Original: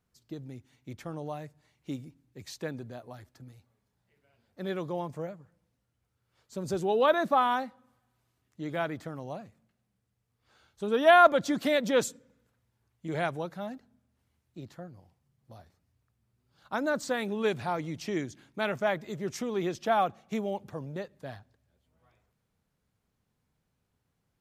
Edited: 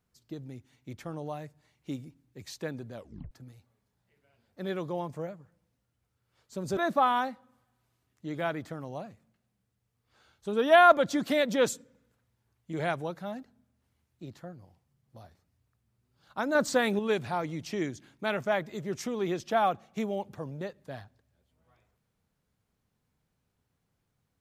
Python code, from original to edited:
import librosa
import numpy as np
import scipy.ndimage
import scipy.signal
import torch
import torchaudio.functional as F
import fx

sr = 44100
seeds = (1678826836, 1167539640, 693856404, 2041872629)

y = fx.edit(x, sr, fx.tape_stop(start_s=2.94, length_s=0.37),
    fx.cut(start_s=6.77, length_s=0.35),
    fx.clip_gain(start_s=16.9, length_s=0.44, db=5.0), tone=tone)